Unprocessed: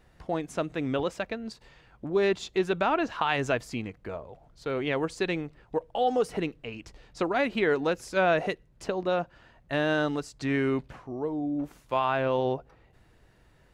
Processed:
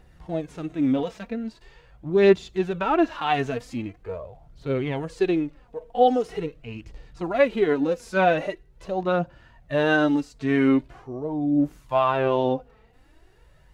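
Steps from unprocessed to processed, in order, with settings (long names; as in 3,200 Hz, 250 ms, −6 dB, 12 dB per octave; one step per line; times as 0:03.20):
phase shifter 0.43 Hz, delay 4.7 ms, feedback 48%
harmonic and percussive parts rebalanced percussive −17 dB
level +6 dB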